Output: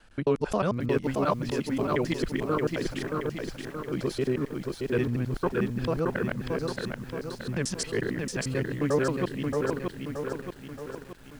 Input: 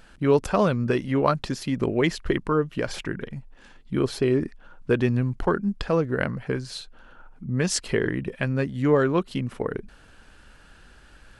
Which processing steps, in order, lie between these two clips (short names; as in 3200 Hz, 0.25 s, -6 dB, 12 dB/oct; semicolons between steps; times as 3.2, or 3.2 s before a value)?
local time reversal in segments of 89 ms; lo-fi delay 0.625 s, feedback 55%, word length 8-bit, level -3.5 dB; gain -5.5 dB